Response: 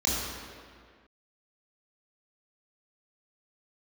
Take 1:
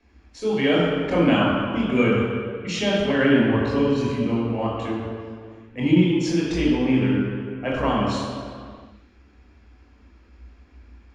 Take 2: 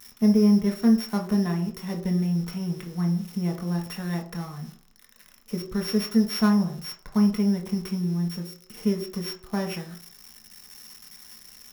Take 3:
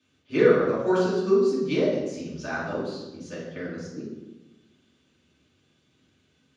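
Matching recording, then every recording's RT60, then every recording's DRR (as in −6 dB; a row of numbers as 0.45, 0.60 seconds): 1; 1.9, 0.60, 1.1 seconds; −5.5, 2.0, −8.0 decibels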